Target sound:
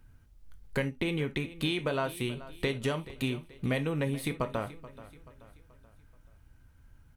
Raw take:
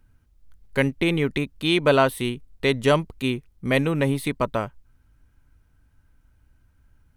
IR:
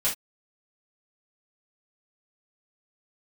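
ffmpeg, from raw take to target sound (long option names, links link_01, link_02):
-filter_complex "[0:a]acompressor=threshold=-30dB:ratio=6,aecho=1:1:431|862|1293|1724:0.141|0.0636|0.0286|0.0129,asplit=2[link_01][link_02];[1:a]atrim=start_sample=2205[link_03];[link_02][link_03]afir=irnorm=-1:irlink=0,volume=-15.5dB[link_04];[link_01][link_04]amix=inputs=2:normalize=0"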